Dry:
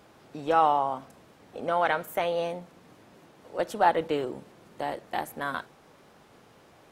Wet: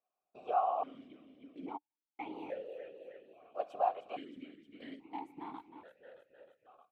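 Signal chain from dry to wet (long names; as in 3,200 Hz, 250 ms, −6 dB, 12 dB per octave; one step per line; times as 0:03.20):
noise gate −42 dBFS, range −27 dB
0:03.93–0:04.37: low-shelf EQ 500 Hz −11 dB
downward compressor 2 to 1, threshold −28 dBFS, peak gain reduction 7 dB
echo with shifted repeats 311 ms, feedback 64%, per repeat −63 Hz, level −11 dB
random phases in short frames
0:01.76–0:02.32: gate pattern "...xx..." 185 BPM −60 dB
formant filter that steps through the vowels 1.2 Hz
level +1.5 dB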